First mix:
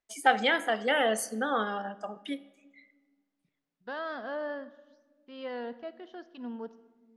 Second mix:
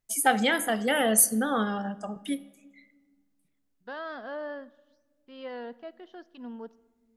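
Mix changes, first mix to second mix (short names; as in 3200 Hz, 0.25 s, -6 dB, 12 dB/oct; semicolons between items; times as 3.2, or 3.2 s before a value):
first voice: remove BPF 350–4400 Hz; second voice: send -6.0 dB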